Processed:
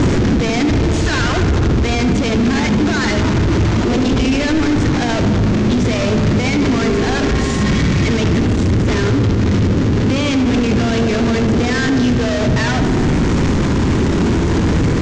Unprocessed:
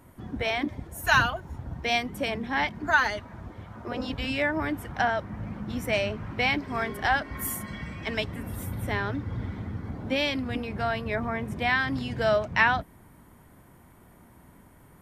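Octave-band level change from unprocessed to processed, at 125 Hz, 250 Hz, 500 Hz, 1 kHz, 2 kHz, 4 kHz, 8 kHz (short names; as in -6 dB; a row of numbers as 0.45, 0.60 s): +20.5, +20.0, +12.5, +6.0, +5.0, +10.5, +15.0 dB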